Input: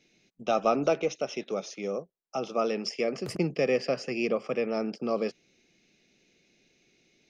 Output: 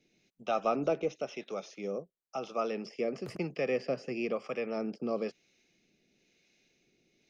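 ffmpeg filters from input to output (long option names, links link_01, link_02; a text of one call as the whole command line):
ffmpeg -i in.wav -filter_complex "[0:a]acrossover=split=630[link_01][link_02];[link_01]aeval=exprs='val(0)*(1-0.5/2+0.5/2*cos(2*PI*1*n/s))':channel_layout=same[link_03];[link_02]aeval=exprs='val(0)*(1-0.5/2-0.5/2*cos(2*PI*1*n/s))':channel_layout=same[link_04];[link_03][link_04]amix=inputs=2:normalize=0,acrossover=split=3500[link_05][link_06];[link_06]acompressor=threshold=-49dB:ratio=4:attack=1:release=60[link_07];[link_05][link_07]amix=inputs=2:normalize=0,volume=-2.5dB" out.wav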